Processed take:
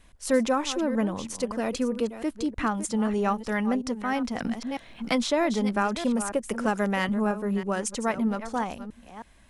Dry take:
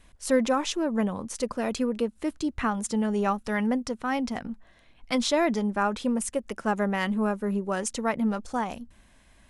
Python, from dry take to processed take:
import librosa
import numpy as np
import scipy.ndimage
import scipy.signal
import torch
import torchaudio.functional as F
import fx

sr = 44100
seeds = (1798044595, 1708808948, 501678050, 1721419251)

y = fx.reverse_delay(x, sr, ms=318, wet_db=-12)
y = fx.band_squash(y, sr, depth_pct=70, at=(4.4, 7.09))